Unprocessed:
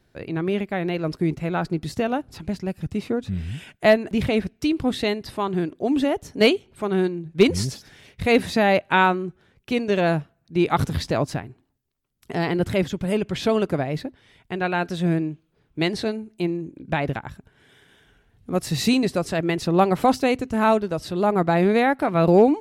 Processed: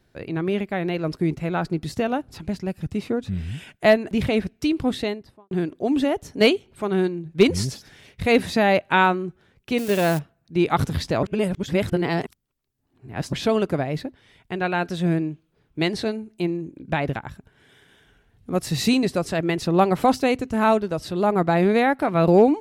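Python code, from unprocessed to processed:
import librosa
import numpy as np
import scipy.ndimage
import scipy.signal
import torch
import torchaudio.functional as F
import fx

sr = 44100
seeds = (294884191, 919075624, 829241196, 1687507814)

y = fx.studio_fade_out(x, sr, start_s=4.87, length_s=0.64)
y = fx.crossing_spikes(y, sr, level_db=-20.5, at=(9.78, 10.19))
y = fx.edit(y, sr, fx.reverse_span(start_s=11.23, length_s=2.1), tone=tone)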